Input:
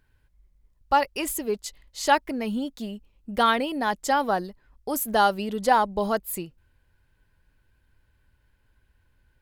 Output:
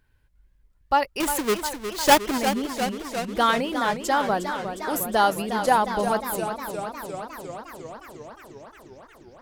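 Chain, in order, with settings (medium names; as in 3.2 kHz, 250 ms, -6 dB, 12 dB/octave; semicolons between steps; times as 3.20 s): 1.20–2.38 s: square wave that keeps the level; modulated delay 356 ms, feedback 74%, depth 122 cents, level -9 dB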